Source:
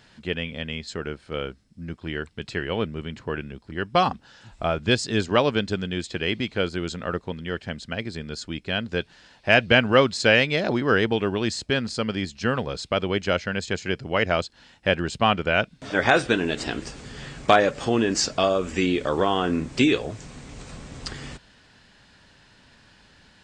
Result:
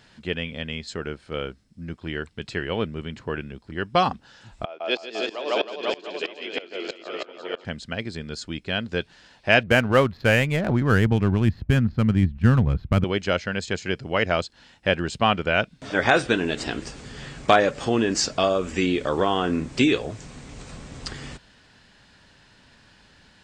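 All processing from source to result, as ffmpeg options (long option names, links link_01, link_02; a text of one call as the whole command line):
ffmpeg -i in.wav -filter_complex "[0:a]asettb=1/sr,asplit=3[link_01][link_02][link_03];[link_01]atrim=end=4.654[link_04];[link_02]atrim=start=4.65:end=7.65,asetpts=PTS-STARTPTS,afade=type=in:duration=0.004:curve=qsin,afade=type=out:start_time=2.996:duration=0.004:curve=qsin,highpass=frequency=330:width=0.5412,highpass=frequency=330:width=1.3066,equalizer=frequency=680:width_type=q:width=4:gain=6,equalizer=frequency=1600:width_type=q:width=4:gain=-6,equalizer=frequency=2600:width_type=q:width=4:gain=3,lowpass=frequency=6000:width=0.5412,lowpass=frequency=6000:width=1.3066,aecho=1:1:150|315|496.5|696.2|915.8:0.794|0.631|0.501|0.398|0.316,atrim=end_sample=132300,aeval=exprs='val(0)*pow(10,-22*if(lt(mod(-3.1*n/s,1),2*abs(-3.1)/1000),1-mod(-3.1*n/s,1)/(2*abs(-3.1)/1000),(mod(-3.1*n/s,1)-2*abs(-3.1)/1000)/(1-2*abs(-3.1)/1000))/20)':channel_layout=same[link_05];[link_03]atrim=start=7.646[link_06];[link_04][link_05]acrossfade=duration=0.004:curve1=hsin:curve2=qsin[link_07];[link_07][link_06]acrossfade=duration=0.004:curve1=qsin:curve2=hsin,asettb=1/sr,asplit=3[link_08][link_09][link_10];[link_08]atrim=end=9.634[link_11];[link_09]atrim=start=9.63:end=13.04,asetpts=PTS-STARTPTS,afade=type=in:duration=0.004:curve=qsin,afade=type=out:start_time=3.406:duration=0.004:curve=qsin,lowpass=2300,adynamicsmooth=sensitivity=6:basefreq=1700,asubboost=boost=12:cutoff=160[link_12];[link_10]atrim=start=13.036[link_13];[link_11][link_12]acrossfade=duration=0.004:curve1=hsin:curve2=qsin[link_14];[link_14][link_13]acrossfade=duration=0.004:curve1=qsin:curve2=hsin" out.wav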